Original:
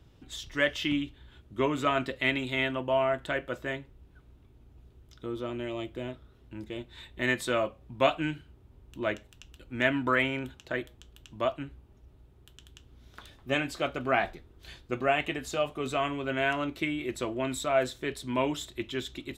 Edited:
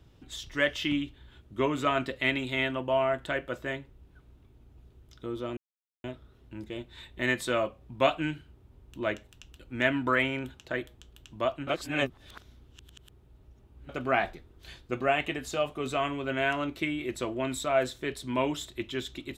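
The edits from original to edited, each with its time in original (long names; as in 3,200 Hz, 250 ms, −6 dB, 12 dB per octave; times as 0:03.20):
0:05.57–0:06.04: silence
0:11.67–0:13.89: reverse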